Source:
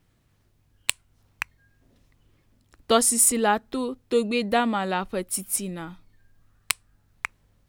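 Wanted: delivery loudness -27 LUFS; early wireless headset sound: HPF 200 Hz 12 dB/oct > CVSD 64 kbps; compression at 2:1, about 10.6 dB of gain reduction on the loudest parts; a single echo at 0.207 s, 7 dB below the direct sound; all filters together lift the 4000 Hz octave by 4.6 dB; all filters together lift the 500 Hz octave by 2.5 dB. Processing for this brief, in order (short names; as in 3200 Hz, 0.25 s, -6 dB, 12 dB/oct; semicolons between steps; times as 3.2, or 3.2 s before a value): bell 500 Hz +3 dB; bell 4000 Hz +6 dB; compressor 2:1, threshold -34 dBFS; HPF 200 Hz 12 dB/oct; echo 0.207 s -7 dB; CVSD 64 kbps; gain +5.5 dB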